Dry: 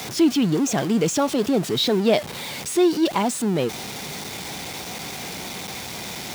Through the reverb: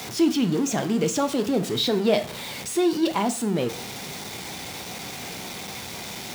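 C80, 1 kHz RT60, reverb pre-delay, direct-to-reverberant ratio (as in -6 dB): 19.0 dB, 0.45 s, 7 ms, 8.5 dB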